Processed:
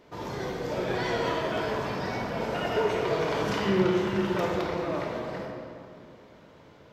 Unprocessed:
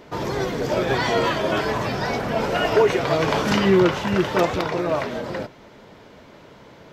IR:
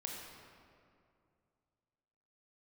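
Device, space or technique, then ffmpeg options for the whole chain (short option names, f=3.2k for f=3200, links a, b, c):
stairwell: -filter_complex "[1:a]atrim=start_sample=2205[a];[0:a][a]afir=irnorm=-1:irlink=0,volume=-7dB"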